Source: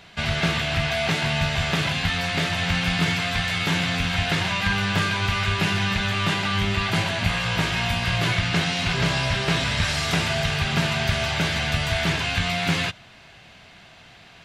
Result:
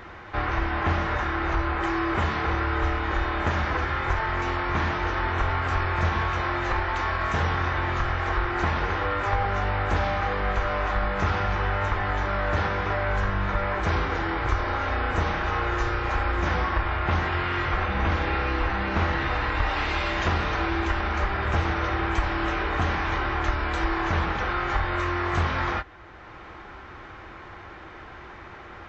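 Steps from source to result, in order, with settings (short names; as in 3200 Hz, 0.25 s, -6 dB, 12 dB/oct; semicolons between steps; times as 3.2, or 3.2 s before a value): compressor 1.5:1, threshold -42 dBFS, peak gain reduction 9 dB; speed mistake 15 ips tape played at 7.5 ips; gain +6 dB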